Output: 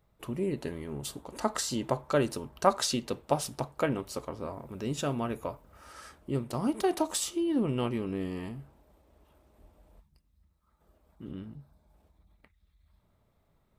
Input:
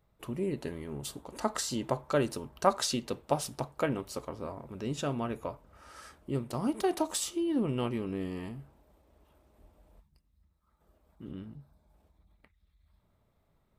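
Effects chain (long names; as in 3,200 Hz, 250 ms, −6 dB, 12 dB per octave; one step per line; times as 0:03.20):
0:04.52–0:05.93: high-shelf EQ 12,000 Hz +11 dB
level +1.5 dB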